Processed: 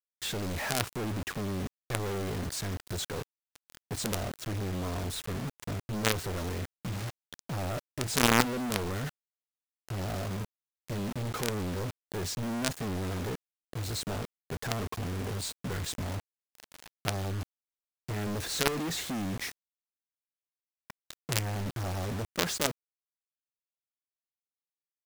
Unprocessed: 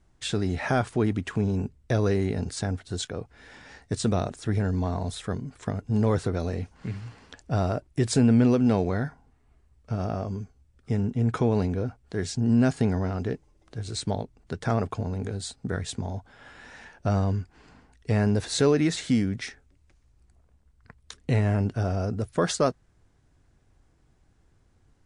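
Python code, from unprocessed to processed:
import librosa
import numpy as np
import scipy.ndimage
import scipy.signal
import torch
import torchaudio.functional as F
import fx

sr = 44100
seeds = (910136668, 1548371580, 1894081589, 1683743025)

y = fx.quant_companded(x, sr, bits=2)
y = F.gain(torch.from_numpy(y), -7.5).numpy()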